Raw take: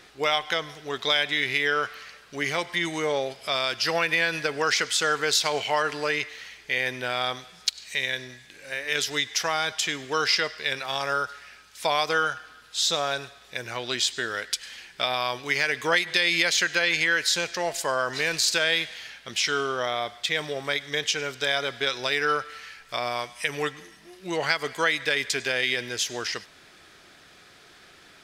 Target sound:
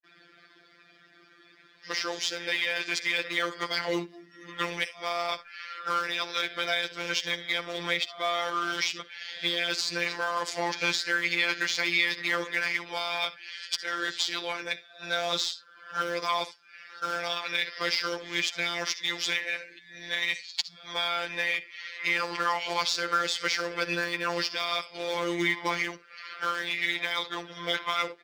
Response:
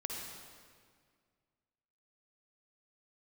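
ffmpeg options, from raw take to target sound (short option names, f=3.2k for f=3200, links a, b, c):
-filter_complex "[0:a]areverse,asplit=2[a][b];[b]equalizer=f=800:t=o:w=0.33:g=-9,equalizer=f=2k:t=o:w=0.33:g=3,equalizer=f=5k:t=o:w=0.33:g=7[c];[1:a]atrim=start_sample=2205,atrim=end_sample=3528[d];[c][d]afir=irnorm=-1:irlink=0,volume=-4.5dB[e];[a][e]amix=inputs=2:normalize=0,acrusher=bits=2:mode=log:mix=0:aa=0.000001,acompressor=threshold=-21dB:ratio=6,afftdn=nr=15:nf=-46,acrossover=split=160 6000:gain=0.0891 1 0.178[f][g][h];[f][g][h]amix=inputs=3:normalize=0,aecho=1:1:6.7:0.62,afftfilt=real='hypot(re,im)*cos(PI*b)':imag='0':win_size=1024:overlap=0.75"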